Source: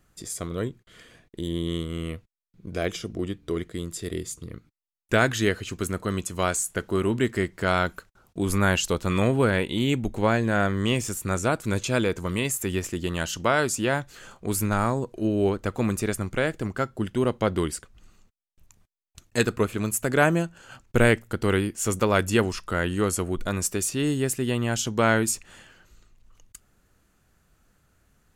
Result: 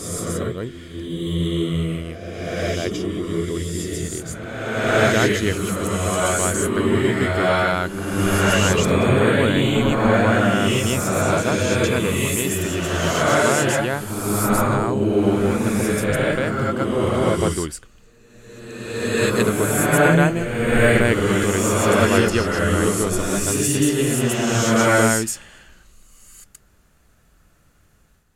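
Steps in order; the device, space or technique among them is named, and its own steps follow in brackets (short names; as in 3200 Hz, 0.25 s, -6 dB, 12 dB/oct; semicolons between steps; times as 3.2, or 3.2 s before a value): reverse reverb (reverse; reverb RT60 1.7 s, pre-delay 0.114 s, DRR -5.5 dB; reverse)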